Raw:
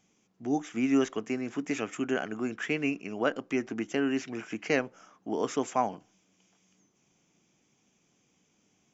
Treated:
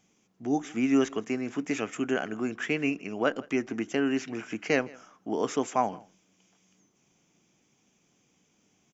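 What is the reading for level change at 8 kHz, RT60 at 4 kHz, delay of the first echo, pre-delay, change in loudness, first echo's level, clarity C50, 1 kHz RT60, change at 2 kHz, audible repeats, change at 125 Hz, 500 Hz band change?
can't be measured, no reverb audible, 162 ms, no reverb audible, +1.5 dB, −23.5 dB, no reverb audible, no reverb audible, +1.5 dB, 1, +1.5 dB, +1.5 dB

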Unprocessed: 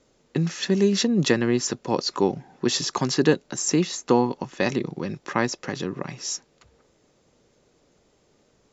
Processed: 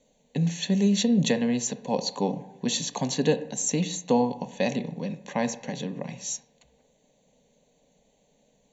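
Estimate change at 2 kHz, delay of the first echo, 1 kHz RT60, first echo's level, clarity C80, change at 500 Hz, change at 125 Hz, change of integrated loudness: −6.5 dB, no echo audible, 0.80 s, no echo audible, 16.5 dB, −4.0 dB, −1.5 dB, −2.5 dB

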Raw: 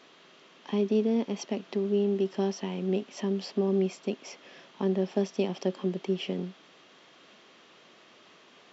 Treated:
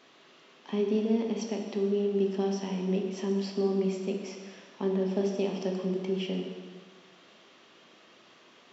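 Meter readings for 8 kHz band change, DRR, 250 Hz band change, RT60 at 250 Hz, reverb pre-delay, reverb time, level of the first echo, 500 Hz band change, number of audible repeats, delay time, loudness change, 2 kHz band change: can't be measured, 2.0 dB, −0.5 dB, 1.5 s, 6 ms, 1.5 s, no echo audible, −0.5 dB, no echo audible, no echo audible, −0.5 dB, −1.0 dB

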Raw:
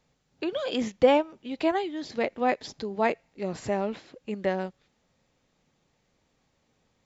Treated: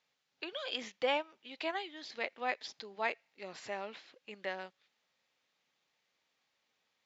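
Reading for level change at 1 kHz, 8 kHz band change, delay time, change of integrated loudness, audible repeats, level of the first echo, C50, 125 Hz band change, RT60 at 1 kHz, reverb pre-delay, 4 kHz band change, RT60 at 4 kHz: −10.0 dB, can't be measured, no echo audible, −10.5 dB, no echo audible, no echo audible, no reverb audible, below −20 dB, no reverb audible, no reverb audible, −2.5 dB, no reverb audible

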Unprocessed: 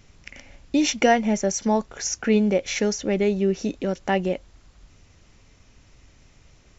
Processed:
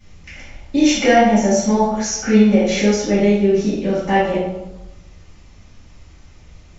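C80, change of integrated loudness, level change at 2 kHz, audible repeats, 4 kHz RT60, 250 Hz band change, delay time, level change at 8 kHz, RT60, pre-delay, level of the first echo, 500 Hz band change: 4.0 dB, +7.0 dB, +6.0 dB, no echo audible, 0.70 s, +8.0 dB, no echo audible, can't be measured, 1.0 s, 3 ms, no echo audible, +6.5 dB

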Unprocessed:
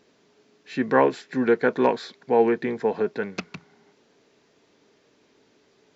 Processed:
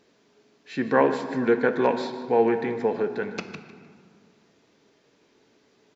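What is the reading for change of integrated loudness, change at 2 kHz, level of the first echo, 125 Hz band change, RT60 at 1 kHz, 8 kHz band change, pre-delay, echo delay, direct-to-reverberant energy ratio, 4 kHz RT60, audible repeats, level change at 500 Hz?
−1.0 dB, −0.5 dB, −15.0 dB, 0.0 dB, 2.0 s, can't be measured, 6 ms, 153 ms, 7.5 dB, 1.0 s, 1, −1.0 dB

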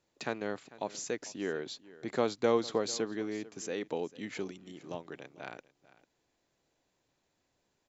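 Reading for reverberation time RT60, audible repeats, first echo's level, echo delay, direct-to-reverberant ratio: no reverb audible, 1, −19.5 dB, 446 ms, no reverb audible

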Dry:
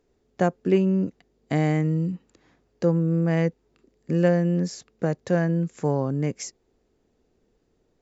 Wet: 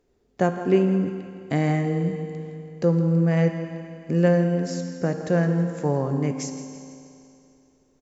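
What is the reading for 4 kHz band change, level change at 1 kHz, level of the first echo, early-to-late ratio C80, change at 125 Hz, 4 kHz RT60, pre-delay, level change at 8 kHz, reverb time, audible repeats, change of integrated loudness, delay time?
+1.0 dB, +1.5 dB, −14.0 dB, 6.5 dB, +1.5 dB, 2.7 s, 4 ms, can't be measured, 2.7 s, 3, +1.0 dB, 164 ms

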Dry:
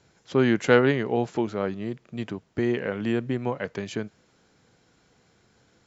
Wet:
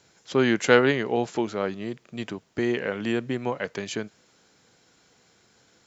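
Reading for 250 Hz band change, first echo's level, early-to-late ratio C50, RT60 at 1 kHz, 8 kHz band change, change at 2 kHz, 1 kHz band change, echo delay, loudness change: −1.0 dB, no echo audible, no reverb audible, no reverb audible, can't be measured, +2.5 dB, +1.5 dB, no echo audible, 0.0 dB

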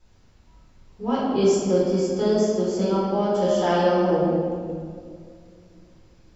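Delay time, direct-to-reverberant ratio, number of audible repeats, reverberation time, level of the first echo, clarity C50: no echo audible, −8.5 dB, no echo audible, 2.1 s, no echo audible, −2.5 dB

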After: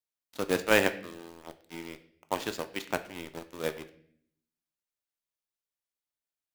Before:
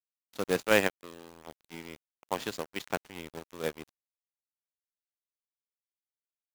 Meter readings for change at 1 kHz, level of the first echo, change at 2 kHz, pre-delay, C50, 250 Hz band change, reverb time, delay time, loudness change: +1.5 dB, no echo audible, +1.5 dB, 3 ms, 14.5 dB, +1.5 dB, 0.60 s, no echo audible, +0.5 dB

